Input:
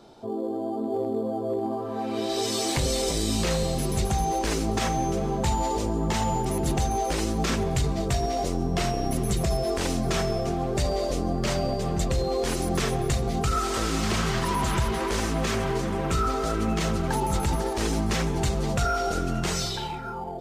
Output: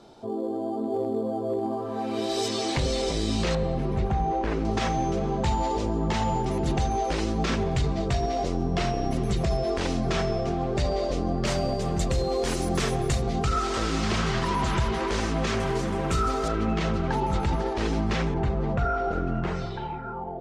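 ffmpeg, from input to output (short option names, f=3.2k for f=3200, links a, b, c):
-af "asetnsamples=n=441:p=0,asendcmd='2.48 lowpass f 4900;3.55 lowpass f 1900;4.65 lowpass f 4900;11.45 lowpass f 10000;13.22 lowpass f 5900;15.6 lowpass f 9900;16.48 lowpass f 3800;18.34 lowpass f 1700',lowpass=11k"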